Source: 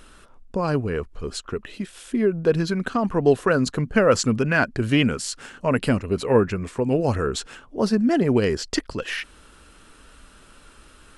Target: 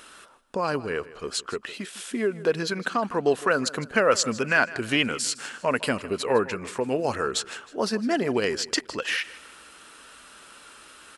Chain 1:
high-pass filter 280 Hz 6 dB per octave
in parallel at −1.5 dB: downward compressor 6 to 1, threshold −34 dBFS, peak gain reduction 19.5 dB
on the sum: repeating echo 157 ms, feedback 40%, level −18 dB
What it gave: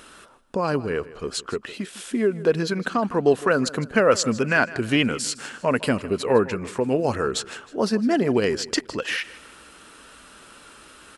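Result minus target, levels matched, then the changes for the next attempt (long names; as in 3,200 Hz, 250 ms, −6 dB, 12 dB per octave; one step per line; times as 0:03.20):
250 Hz band +3.0 dB
change: high-pass filter 740 Hz 6 dB per octave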